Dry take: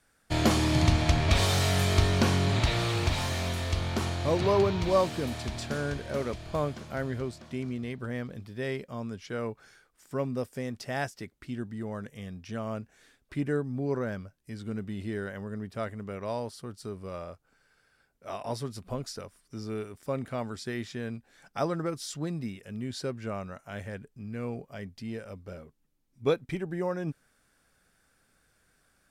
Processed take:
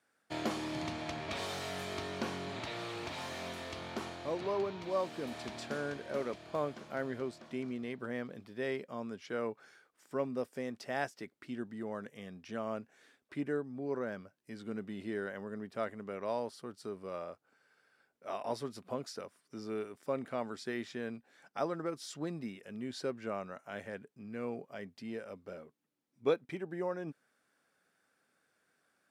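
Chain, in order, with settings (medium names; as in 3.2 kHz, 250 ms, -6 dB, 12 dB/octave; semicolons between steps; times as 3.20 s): gain riding within 4 dB 0.5 s; high-pass 240 Hz 12 dB/octave; treble shelf 4.2 kHz -7.5 dB; trim -5.5 dB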